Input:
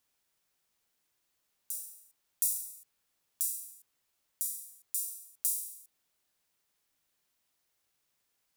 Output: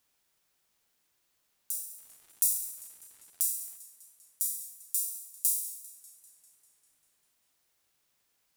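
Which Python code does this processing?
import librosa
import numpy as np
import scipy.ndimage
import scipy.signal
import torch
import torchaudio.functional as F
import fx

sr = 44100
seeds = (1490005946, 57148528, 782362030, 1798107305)

y = fx.dmg_crackle(x, sr, seeds[0], per_s=310.0, level_db=-52.0, at=(1.97, 3.76), fade=0.02)
y = fx.echo_warbled(y, sr, ms=198, feedback_pct=66, rate_hz=2.8, cents=81, wet_db=-17.5)
y = y * 10.0 ** (3.5 / 20.0)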